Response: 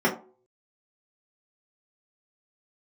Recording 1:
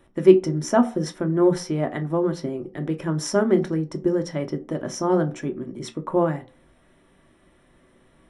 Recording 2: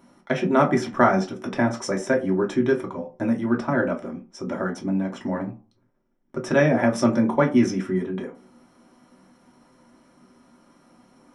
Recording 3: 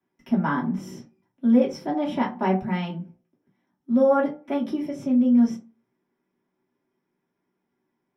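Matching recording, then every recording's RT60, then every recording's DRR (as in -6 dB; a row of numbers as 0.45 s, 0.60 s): 3; no single decay rate, no single decay rate, no single decay rate; 5.0 dB, -1.0 dB, -6.0 dB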